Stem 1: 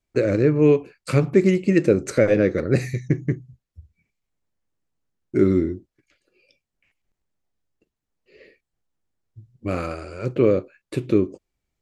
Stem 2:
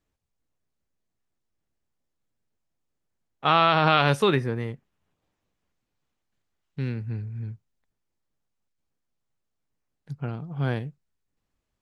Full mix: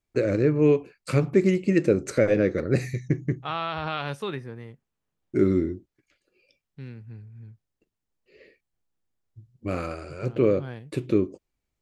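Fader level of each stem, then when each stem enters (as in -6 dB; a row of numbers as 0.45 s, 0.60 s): -3.5 dB, -10.5 dB; 0.00 s, 0.00 s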